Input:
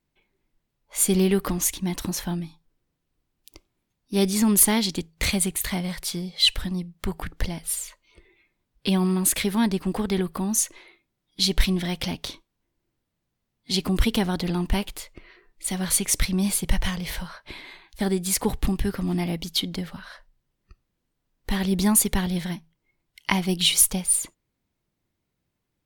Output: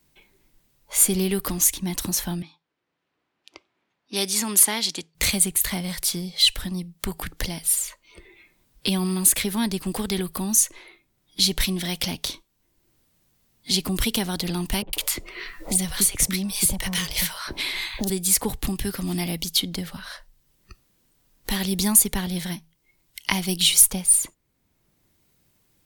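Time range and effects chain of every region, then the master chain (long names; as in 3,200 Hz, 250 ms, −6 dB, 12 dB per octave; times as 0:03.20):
0:02.42–0:05.15: low-pass that shuts in the quiet parts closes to 2,100 Hz, open at −20.5 dBFS + meter weighting curve A
0:14.82–0:18.10: notch filter 1,600 Hz, Q 27 + multiband delay without the direct sound lows, highs 110 ms, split 830 Hz + multiband upward and downward compressor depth 70%
whole clip: high-shelf EQ 4,800 Hz +11 dB; multiband upward and downward compressor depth 40%; level −2 dB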